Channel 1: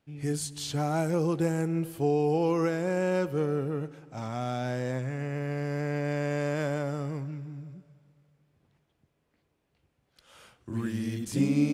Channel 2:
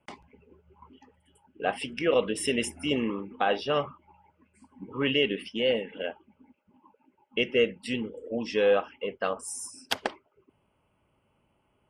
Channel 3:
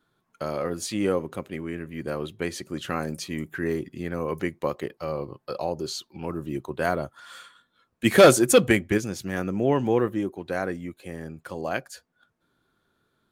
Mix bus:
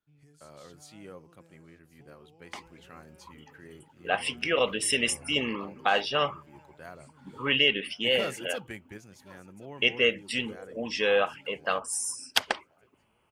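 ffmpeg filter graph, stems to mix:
ffmpeg -i stem1.wav -i stem2.wav -i stem3.wav -filter_complex "[0:a]acompressor=threshold=-36dB:ratio=6,volume=-18.5dB,asplit=2[link_01][link_02];[link_02]volume=-20dB[link_03];[1:a]tiltshelf=frequency=780:gain=-3.5,adelay=2450,volume=2.5dB[link_04];[2:a]volume=-18.5dB,asplit=2[link_05][link_06];[link_06]volume=-21.5dB[link_07];[link_03][link_07]amix=inputs=2:normalize=0,aecho=0:1:1072|2144|3216|4288|5360|6432|7504:1|0.5|0.25|0.125|0.0625|0.0312|0.0156[link_08];[link_01][link_04][link_05][link_08]amix=inputs=4:normalize=0,equalizer=frequency=330:width=0.76:gain=-5" out.wav

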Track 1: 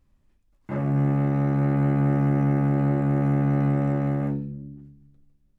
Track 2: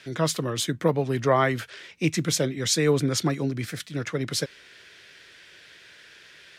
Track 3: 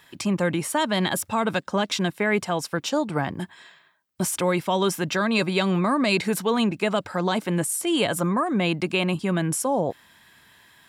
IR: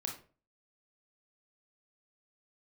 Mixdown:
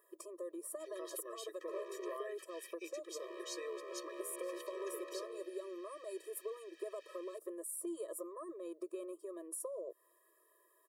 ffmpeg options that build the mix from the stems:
-filter_complex "[0:a]aecho=1:1:5.5:0.62,asoftclip=type=hard:threshold=-29.5dB,adelay=1000,volume=-10dB,asplit=3[link_01][link_02][link_03];[link_01]atrim=end=2.17,asetpts=PTS-STARTPTS,afade=type=out:start_time=2.166:duration=0.004:curve=hsin[link_04];[link_02]atrim=start=2.17:end=3.2,asetpts=PTS-STARTPTS,volume=0[link_05];[link_03]atrim=start=3.2,asetpts=PTS-STARTPTS,afade=type=in:duration=0.004:curve=hsin[link_06];[link_04][link_05][link_06]concat=n=3:v=0:a=1[link_07];[1:a]acompressor=threshold=-35dB:ratio=2,adelay=800,volume=-7.5dB[link_08];[2:a]acrossover=split=120|3000[link_09][link_10][link_11];[link_10]acompressor=threshold=-27dB:ratio=6[link_12];[link_09][link_12][link_11]amix=inputs=3:normalize=0,firequalizer=gain_entry='entry(610,0);entry(2700,-27);entry(10000,0)':delay=0.05:min_phase=1,volume=-5.5dB[link_13];[link_08][link_13]amix=inputs=2:normalize=0,acompressor=threshold=-41dB:ratio=2,volume=0dB[link_14];[link_07][link_14]amix=inputs=2:normalize=0,afftfilt=real='re*eq(mod(floor(b*sr/1024/330),2),1)':imag='im*eq(mod(floor(b*sr/1024/330),2),1)':win_size=1024:overlap=0.75"

